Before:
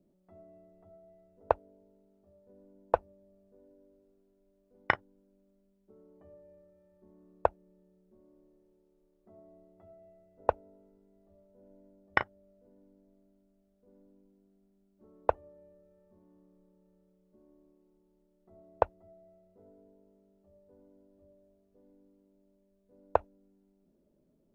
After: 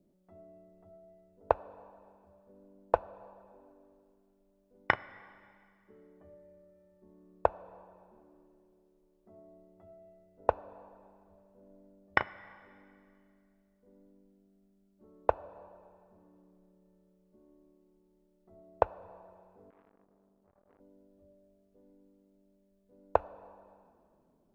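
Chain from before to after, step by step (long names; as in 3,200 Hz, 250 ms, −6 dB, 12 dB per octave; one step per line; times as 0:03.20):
dense smooth reverb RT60 2.3 s, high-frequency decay 0.95×, DRR 17.5 dB
0:19.70–0:20.80: saturating transformer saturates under 1,100 Hz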